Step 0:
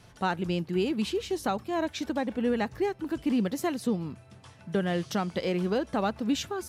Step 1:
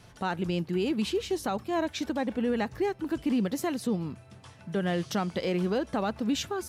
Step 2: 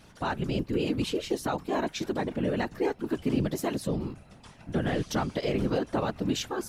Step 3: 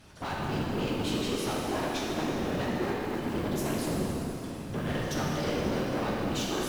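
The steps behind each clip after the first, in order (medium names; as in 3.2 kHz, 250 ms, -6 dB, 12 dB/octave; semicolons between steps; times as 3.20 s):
peak limiter -21 dBFS, peak gain reduction 5 dB; trim +1 dB
whisper effect
modulation noise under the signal 29 dB; valve stage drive 32 dB, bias 0.4; plate-style reverb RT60 3.6 s, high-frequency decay 0.85×, DRR -4.5 dB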